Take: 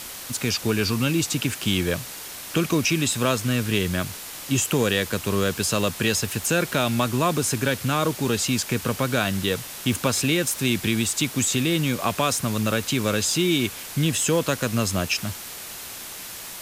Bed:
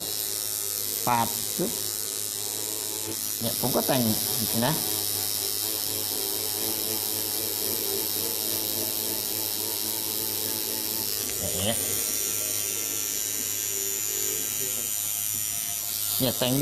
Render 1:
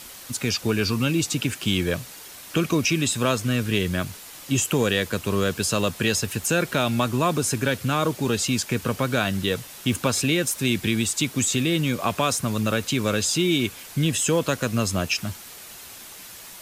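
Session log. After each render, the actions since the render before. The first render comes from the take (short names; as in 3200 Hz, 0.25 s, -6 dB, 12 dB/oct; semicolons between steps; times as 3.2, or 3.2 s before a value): denoiser 6 dB, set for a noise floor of -37 dBFS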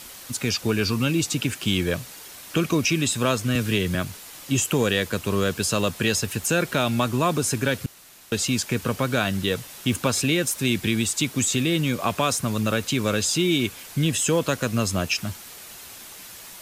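3.55–3.95 three-band squash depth 40%; 7.86–8.32 room tone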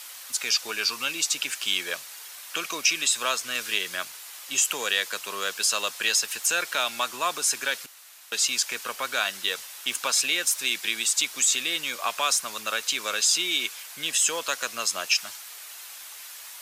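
HPF 920 Hz 12 dB/oct; dynamic EQ 5500 Hz, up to +4 dB, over -40 dBFS, Q 1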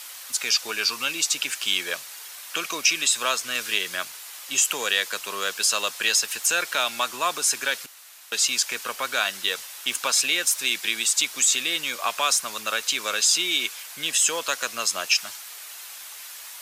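gain +2 dB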